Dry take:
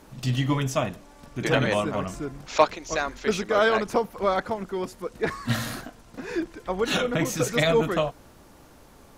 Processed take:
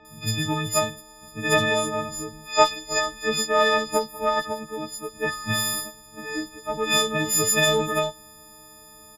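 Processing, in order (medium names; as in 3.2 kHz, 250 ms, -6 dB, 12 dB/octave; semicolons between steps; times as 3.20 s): partials quantised in pitch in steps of 6 st; Chebyshev shaper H 3 -24 dB, 6 -37 dB, 7 -38 dB, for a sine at -1.5 dBFS; bands offset in time lows, highs 50 ms, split 3.4 kHz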